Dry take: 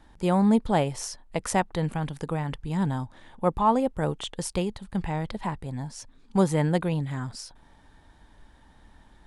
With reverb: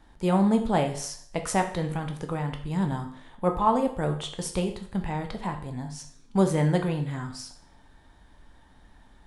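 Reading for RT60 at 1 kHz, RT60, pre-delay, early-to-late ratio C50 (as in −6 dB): 0.55 s, 0.55 s, 9 ms, 10.0 dB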